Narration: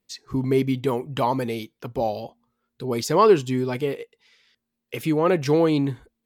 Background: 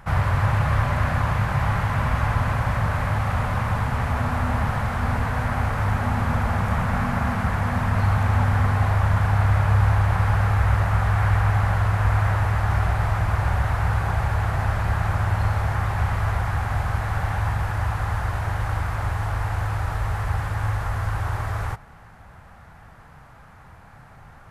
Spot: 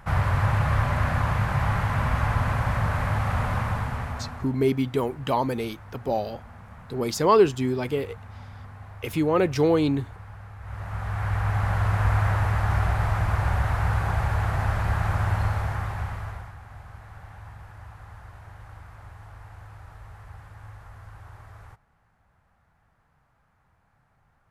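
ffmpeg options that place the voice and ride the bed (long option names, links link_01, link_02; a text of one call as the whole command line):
ffmpeg -i stem1.wav -i stem2.wav -filter_complex "[0:a]adelay=4100,volume=-1.5dB[link_01];[1:a]volume=18.5dB,afade=type=out:start_time=3.54:duration=0.99:silence=0.0944061,afade=type=in:start_time=10.6:duration=1.34:silence=0.0944061,afade=type=out:start_time=15.32:duration=1.23:silence=0.133352[link_02];[link_01][link_02]amix=inputs=2:normalize=0" out.wav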